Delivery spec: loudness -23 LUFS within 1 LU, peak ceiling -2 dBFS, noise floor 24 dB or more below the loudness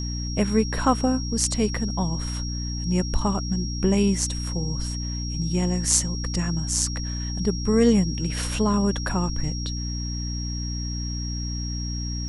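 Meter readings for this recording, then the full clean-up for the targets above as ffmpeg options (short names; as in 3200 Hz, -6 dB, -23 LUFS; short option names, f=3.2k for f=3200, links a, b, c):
hum 60 Hz; harmonics up to 300 Hz; hum level -27 dBFS; steady tone 5600 Hz; tone level -34 dBFS; loudness -25.0 LUFS; peak -3.0 dBFS; loudness target -23.0 LUFS
-> -af "bandreject=f=60:t=h:w=4,bandreject=f=120:t=h:w=4,bandreject=f=180:t=h:w=4,bandreject=f=240:t=h:w=4,bandreject=f=300:t=h:w=4"
-af "bandreject=f=5.6k:w=30"
-af "volume=2dB,alimiter=limit=-2dB:level=0:latency=1"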